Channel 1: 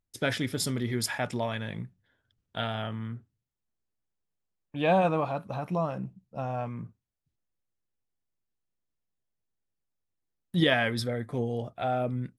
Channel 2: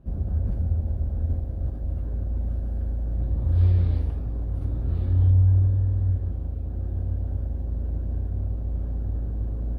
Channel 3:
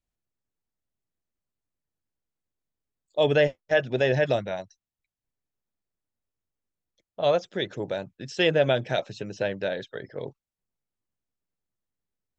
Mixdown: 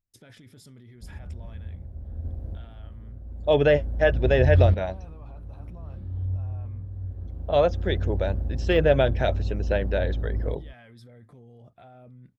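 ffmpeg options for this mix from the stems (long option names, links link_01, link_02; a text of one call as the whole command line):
ffmpeg -i stem1.wav -i stem2.wav -i stem3.wav -filter_complex "[0:a]lowshelf=frequency=190:gain=8,acompressor=threshold=-32dB:ratio=6,alimiter=level_in=9.5dB:limit=-24dB:level=0:latency=1:release=11,volume=-9.5dB,volume=-9dB,asplit=2[link_01][link_02];[1:a]adelay=950,volume=0.5dB[link_03];[2:a]lowpass=frequency=2500:poles=1,deesser=0.9,adelay=300,volume=2.5dB[link_04];[link_02]apad=whole_len=473551[link_05];[link_03][link_05]sidechaincompress=threshold=-59dB:ratio=10:attack=8.4:release=991[link_06];[link_01][link_06][link_04]amix=inputs=3:normalize=0" out.wav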